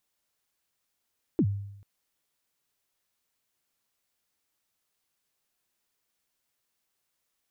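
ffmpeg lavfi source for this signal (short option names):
-f lavfi -i "aevalsrc='0.126*pow(10,-3*t/0.81)*sin(2*PI*(380*0.065/log(100/380)*(exp(log(100/380)*min(t,0.065)/0.065)-1)+100*max(t-0.065,0)))':d=0.44:s=44100"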